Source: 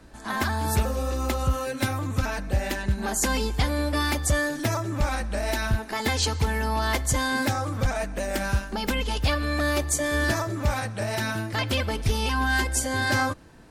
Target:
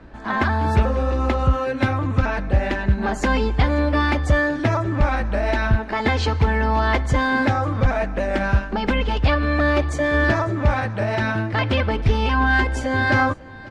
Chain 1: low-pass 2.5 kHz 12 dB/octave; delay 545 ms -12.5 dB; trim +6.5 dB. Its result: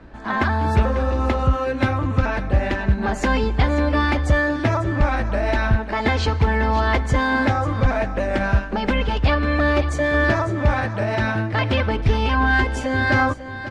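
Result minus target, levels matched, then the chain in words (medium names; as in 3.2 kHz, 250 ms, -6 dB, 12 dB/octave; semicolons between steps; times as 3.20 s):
echo-to-direct +8.5 dB
low-pass 2.5 kHz 12 dB/octave; delay 545 ms -21 dB; trim +6.5 dB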